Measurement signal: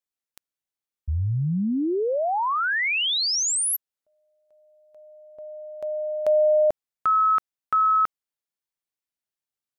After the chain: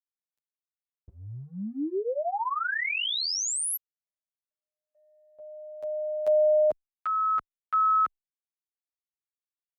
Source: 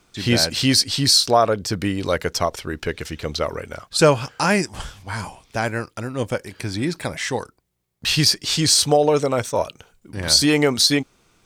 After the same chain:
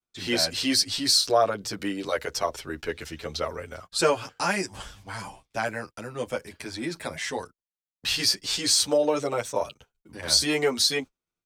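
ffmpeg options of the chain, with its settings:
-filter_complex "[0:a]agate=range=-33dB:threshold=-45dB:ratio=3:release=63:detection=peak,acrossover=split=250|1300[a][b][c];[a]acompressor=threshold=-37dB:ratio=6:attack=0.97:release=26:knee=1:detection=rms[d];[d][b][c]amix=inputs=3:normalize=0,asplit=2[e][f];[f]adelay=9,afreqshift=0.27[g];[e][g]amix=inputs=2:normalize=1,volume=-2.5dB"

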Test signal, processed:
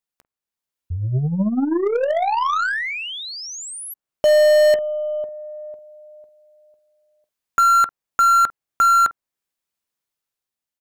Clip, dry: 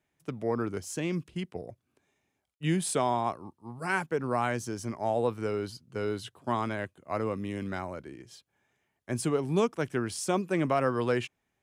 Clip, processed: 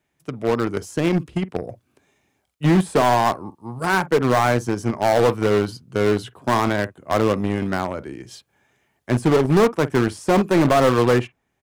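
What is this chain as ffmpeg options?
-filter_complex "[0:a]dynaudnorm=f=330:g=5:m=5dB,acrossover=split=1800[a][b];[a]aecho=1:1:15|48:0.141|0.188[c];[b]alimiter=level_in=11dB:limit=-24dB:level=0:latency=1:release=441,volume=-11dB[d];[c][d]amix=inputs=2:normalize=0,aeval=exprs='0.0841*(cos(1*acos(clip(val(0)/0.0841,-1,1)))-cos(1*PI/2))+0.00188*(cos(2*acos(clip(val(0)/0.0841,-1,1)))-cos(2*PI/2))+0.0168*(cos(3*acos(clip(val(0)/0.0841,-1,1)))-cos(3*PI/2))+0.00531*(cos(5*acos(clip(val(0)/0.0841,-1,1)))-cos(5*PI/2))':c=same,volume=8.5dB"

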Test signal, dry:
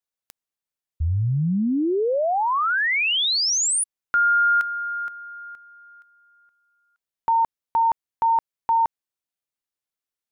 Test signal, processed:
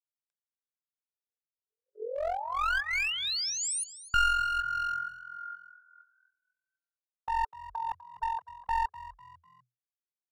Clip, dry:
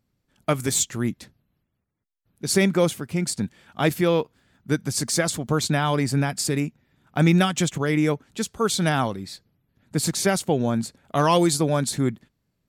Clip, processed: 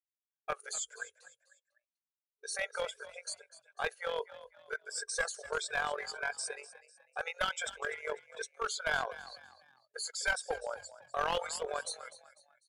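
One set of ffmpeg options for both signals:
-filter_complex "[0:a]afftfilt=real='re*pow(10,9/40*sin(2*PI*(1.7*log(max(b,1)*sr/1024/100)/log(2)-(1.5)*(pts-256)/sr)))':imag='im*pow(10,9/40*sin(2*PI*(1.7*log(max(b,1)*sr/1024/100)/log(2)-(1.5)*(pts-256)/sr)))':win_size=1024:overlap=0.75,equalizer=f=1.6k:w=4.3:g=11.5,bandreject=f=1.8k:w=6.2,afftdn=nr=16:nf=-29,afftfilt=real='re*between(b*sr/4096,420,11000)':imag='im*between(b*sr/4096,420,11000)':win_size=4096:overlap=0.75,agate=range=-20dB:threshold=-51dB:ratio=3:release=151:detection=rms,acrossover=split=2200[a][b];[a]tremolo=f=44:d=0.788[c];[b]alimiter=limit=-20.5dB:level=0:latency=1:release=11[d];[c][d]amix=inputs=2:normalize=0,aeval=exprs='clip(val(0),-1,0.0944)':c=same,asplit=4[e][f][g][h];[f]adelay=249,afreqshift=41,volume=-16dB[i];[g]adelay=498,afreqshift=82,volume=-24.4dB[j];[h]adelay=747,afreqshift=123,volume=-32.8dB[k];[e][i][j][k]amix=inputs=4:normalize=0,volume=-8.5dB"

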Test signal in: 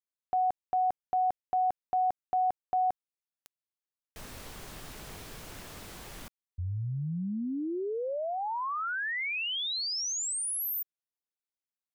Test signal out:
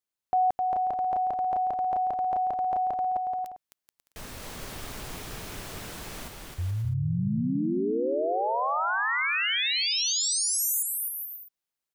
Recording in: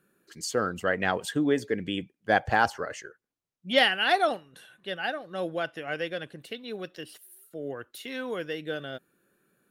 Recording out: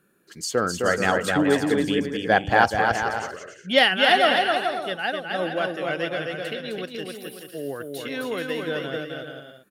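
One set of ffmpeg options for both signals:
-af "aecho=1:1:260|429|538.8|610.3|656.7:0.631|0.398|0.251|0.158|0.1,volume=4dB"

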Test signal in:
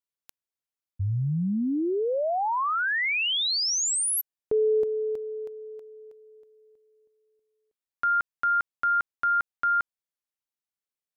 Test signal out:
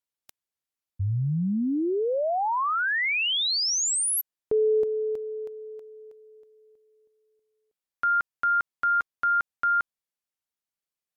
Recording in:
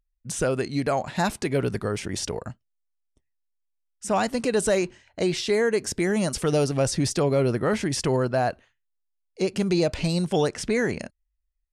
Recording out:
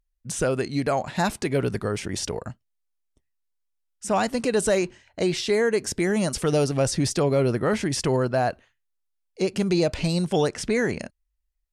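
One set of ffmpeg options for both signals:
-af "volume=1dB" -ar 48000 -c:a libmp3lame -b:a 128k

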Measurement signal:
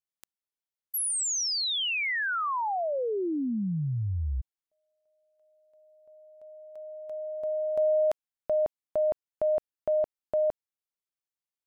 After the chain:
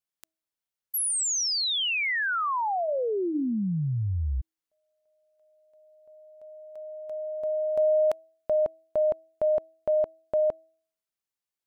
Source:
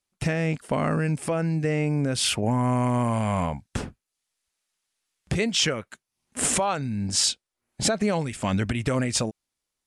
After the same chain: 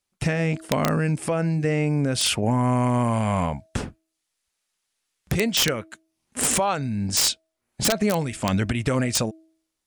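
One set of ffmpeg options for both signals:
-af "aeval=exprs='(mod(4.73*val(0)+1,2)-1)/4.73':c=same,bandreject=f=321.8:t=h:w=4,bandreject=f=643.6:t=h:w=4,volume=2dB"

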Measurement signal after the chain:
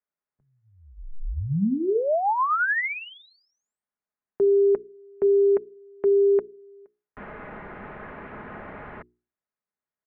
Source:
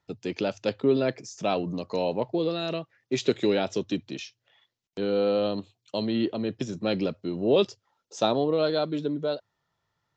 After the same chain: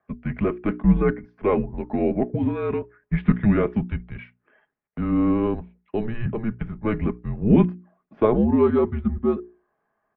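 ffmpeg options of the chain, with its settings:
-af "highpass=f=290:t=q:w=0.5412,highpass=f=290:t=q:w=1.307,lowpass=f=2.2k:t=q:w=0.5176,lowpass=f=2.2k:t=q:w=0.7071,lowpass=f=2.2k:t=q:w=1.932,afreqshift=-220,bandreject=f=60:t=h:w=6,bandreject=f=120:t=h:w=6,bandreject=f=180:t=h:w=6,bandreject=f=240:t=h:w=6,bandreject=f=300:t=h:w=6,bandreject=f=360:t=h:w=6,bandreject=f=420:t=h:w=6,aecho=1:1:4.8:0.34,volume=6.5dB"

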